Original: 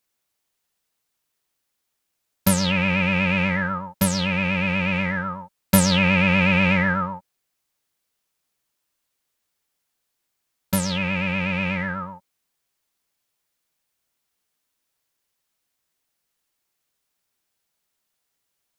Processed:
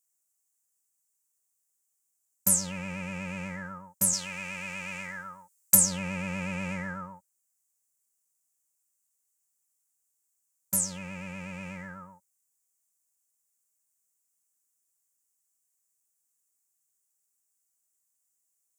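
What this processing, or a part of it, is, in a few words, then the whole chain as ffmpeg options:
budget condenser microphone: -filter_complex "[0:a]highpass=62,highshelf=f=5300:t=q:w=3:g=13,asettb=1/sr,asplit=3[s0][s1][s2];[s0]atrim=end=4.134[s3];[s1]atrim=start=4.13:end=5.75,asetpts=PTS-STARTPTS,afade=t=in:d=0.004:c=qsin,afade=t=out:st=1.616:d=0.004:c=qsin,tiltshelf=f=840:g=-7[s4];[s2]atrim=start=5.746[s5];[s3][s4]acrossfade=d=0.004:c1=hsin:c2=qsin[s6];[s6][s5]acrossfade=d=0.004:c1=qsin:c2=hsin,volume=0.188"

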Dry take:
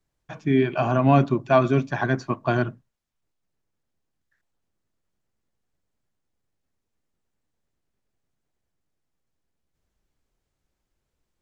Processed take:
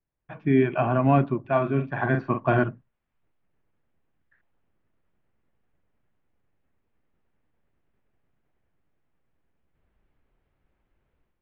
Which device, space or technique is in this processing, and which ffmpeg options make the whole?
action camera in a waterproof case: -filter_complex "[0:a]asettb=1/sr,asplit=3[s0][s1][s2];[s0]atrim=end=1.404[s3];[s1]atrim=start=1.4:end=2.64,asetpts=PTS-STARTPTS,afade=t=in:d=0.004:c=qsin,afade=t=out:st=1.236:d=0.004:c=qsin,asplit=2[s4][s5];[s5]adelay=44,volume=0.447[s6];[s4][s6]amix=inputs=2:normalize=0,atrim=end_sample=54684[s7];[s2]atrim=start=2.636[s8];[s3][s7]acrossfade=d=0.004:c1=hsin:c2=qsin[s9];[s9][s8]acrossfade=d=0.004:c1=qsin:c2=hsin,lowpass=f=2700:w=0.5412,lowpass=f=2700:w=1.3066,dynaudnorm=f=120:g=5:m=5.62,volume=0.376" -ar 48000 -c:a aac -b:a 96k

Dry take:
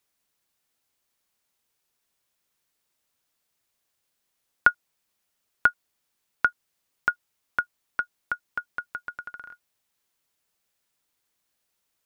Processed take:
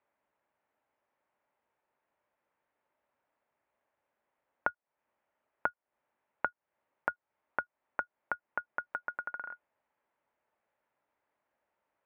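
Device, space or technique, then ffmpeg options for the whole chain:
bass amplifier: -af "acompressor=threshold=0.02:ratio=4,highpass=68,equalizer=f=80:t=q:w=4:g=-6,equalizer=f=110:t=q:w=4:g=-5,equalizer=f=170:t=q:w=4:g=-7,equalizer=f=590:t=q:w=4:g=8,equalizer=f=890:t=q:w=4:g=7,lowpass=f=2100:w=0.5412,lowpass=f=2100:w=1.3066,volume=1.12"

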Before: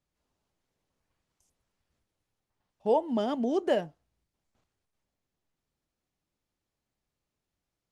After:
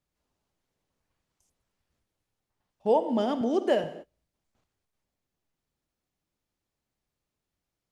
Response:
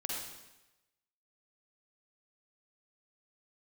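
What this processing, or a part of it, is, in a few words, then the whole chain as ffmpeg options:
keyed gated reverb: -filter_complex "[0:a]asplit=3[s0][s1][s2];[1:a]atrim=start_sample=2205[s3];[s1][s3]afir=irnorm=-1:irlink=0[s4];[s2]apad=whole_len=349036[s5];[s4][s5]sidechaingate=range=0.0224:threshold=0.002:ratio=16:detection=peak,volume=0.335[s6];[s0][s6]amix=inputs=2:normalize=0,asettb=1/sr,asplit=3[s7][s8][s9];[s7]atrim=end=3.414[s10];[s8]atrim=start=3.41:end=3.84,asetpts=PTS-STARTPTS,afade=t=in:d=0.004:c=qsin,afade=t=out:st=0.426:d=0.004:c=qsin,highpass=180[s11];[s9]atrim=start=3.836[s12];[s10][s11]acrossfade=d=0.004:c1=hsin:c2=qsin[s13];[s13][s12]acrossfade=d=0.004:c1=qsin:c2=hsin"

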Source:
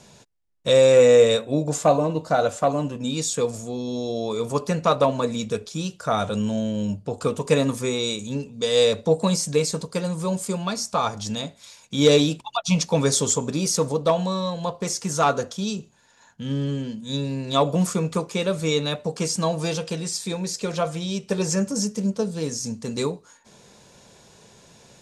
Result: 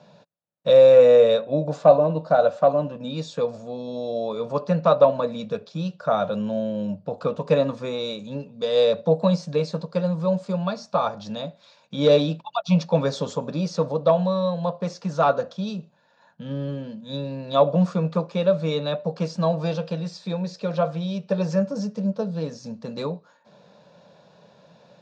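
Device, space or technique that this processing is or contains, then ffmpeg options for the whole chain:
kitchen radio: -af "highpass=170,equalizer=f=170:t=q:w=4:g=8,equalizer=f=250:t=q:w=4:g=-4,equalizer=f=380:t=q:w=4:g=-9,equalizer=f=580:t=q:w=4:g=9,equalizer=f=2100:t=q:w=4:g=-9,equalizer=f=3100:t=q:w=4:g=-7,lowpass=f=4000:w=0.5412,lowpass=f=4000:w=1.3066,volume=0.891"

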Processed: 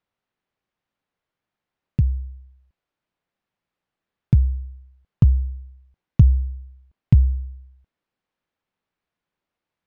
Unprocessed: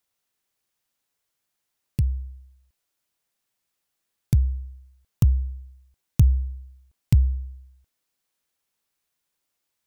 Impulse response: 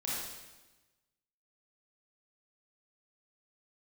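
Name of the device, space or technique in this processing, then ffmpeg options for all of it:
phone in a pocket: -af "lowpass=3500,equalizer=f=180:t=o:w=0.77:g=3.5,highshelf=f=2500:g=-9,volume=1.41"

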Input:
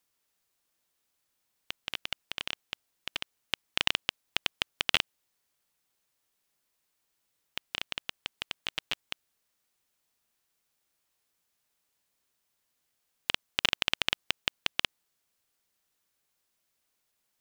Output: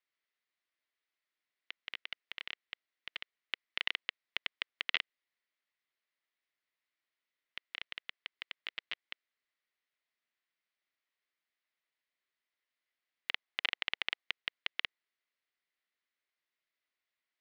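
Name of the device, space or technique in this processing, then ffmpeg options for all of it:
phone earpiece: -filter_complex "[0:a]highpass=350,equalizer=f=480:t=q:w=4:g=-5,equalizer=f=830:t=q:w=4:g=-7,equalizer=f=2000:t=q:w=4:g=9,lowpass=f=4400:w=0.5412,lowpass=f=4400:w=1.3066,asettb=1/sr,asplit=3[s0][s1][s2];[s0]atrim=end=13.314[s3];[s1]atrim=start=13.31:end=14.22,asetpts=PTS-STARTPTS,afade=t=in:d=0.004:c=qsin,afade=t=out:st=0.906:d=0.004:c=qsin,equalizer=f=800:t=o:w=0.41:g=6[s4];[s2]atrim=start=14.216[s5];[s3][s4]acrossfade=d=0.004:c1=hsin:c2=qsin[s6];[s6][s5]acrossfade=d=0.004:c1=qsin:c2=hsin,volume=0.376"

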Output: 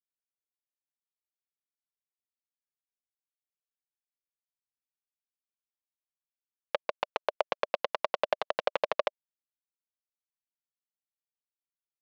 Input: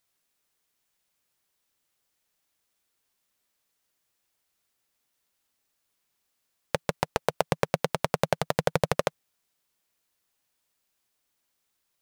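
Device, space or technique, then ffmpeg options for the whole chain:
hand-held game console: -af "acrusher=bits=3:mix=0:aa=0.000001,highpass=500,equalizer=f=600:t=q:w=4:g=7,equalizer=f=1100:t=q:w=4:g=5,equalizer=f=2800:t=q:w=4:g=4,lowpass=f=4100:w=0.5412,lowpass=f=4100:w=1.3066,volume=0.531"

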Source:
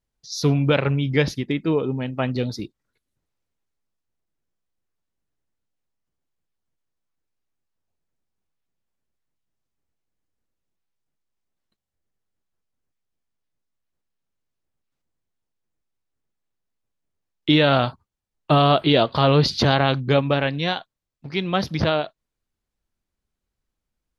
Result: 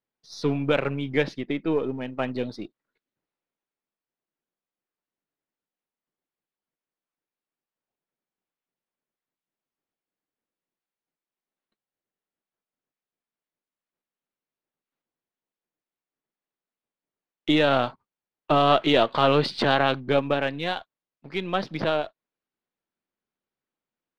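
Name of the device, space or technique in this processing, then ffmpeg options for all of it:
crystal radio: -filter_complex "[0:a]highpass=230,lowpass=3300,aeval=exprs='if(lt(val(0),0),0.708*val(0),val(0))':c=same,asettb=1/sr,asplit=3[s0][s1][s2];[s0]atrim=end=18.674[s3];[s1]atrim=start=18.67:end=19.93,asetpts=PTS-STARTPTS,afade=t=in:d=0.004:c=qsin,afade=t=out:st=1.256:d=0.004:c=qsin,equalizer=f=2000:t=o:w=2.1:g=3.5[s4];[s2]atrim=start=19.926[s5];[s3][s4]acrossfade=d=0.004:c1=hsin:c2=qsin[s6];[s6][s5]acrossfade=d=0.004:c1=qsin:c2=hsin,volume=0.891"

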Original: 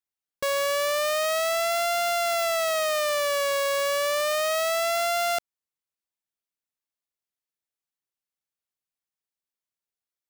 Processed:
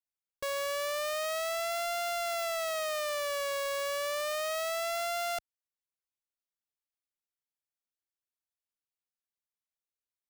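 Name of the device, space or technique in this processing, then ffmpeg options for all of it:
low shelf boost with a cut just above: -af "lowshelf=f=71:g=6.5,equalizer=f=200:t=o:w=1.1:g=-5.5,volume=0.398"

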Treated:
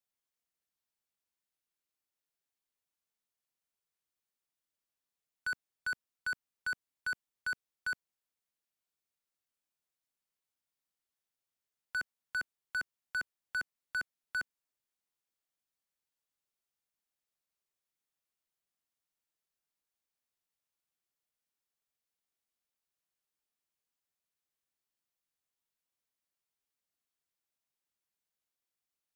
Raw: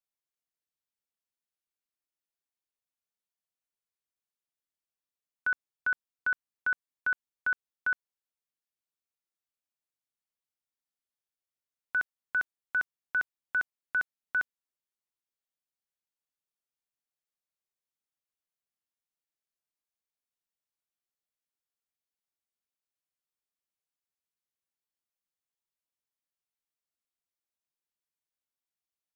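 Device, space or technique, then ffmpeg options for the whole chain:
one-band saturation: -filter_complex "[0:a]acrossover=split=230|2100[s0][s1][s2];[s1]asoftclip=type=tanh:threshold=0.0112[s3];[s0][s3][s2]amix=inputs=3:normalize=0,volume=1.19"

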